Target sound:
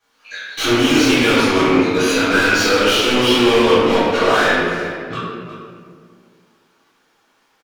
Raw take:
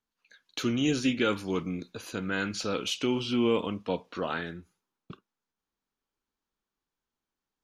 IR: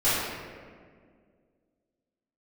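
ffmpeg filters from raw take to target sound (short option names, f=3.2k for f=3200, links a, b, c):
-filter_complex "[0:a]flanger=delay=17.5:depth=2.2:speed=0.8,asplit=2[a][b];[b]highpass=f=720:p=1,volume=34dB,asoftclip=type=tanh:threshold=-15dB[c];[a][c]amix=inputs=2:normalize=0,lowpass=f=5.3k:p=1,volume=-6dB,asplit=2[d][e];[e]adelay=360,highpass=300,lowpass=3.4k,asoftclip=type=hard:threshold=-24.5dB,volume=-10dB[f];[d][f]amix=inputs=2:normalize=0[g];[1:a]atrim=start_sample=2205[h];[g][h]afir=irnorm=-1:irlink=0,volume=-7.5dB"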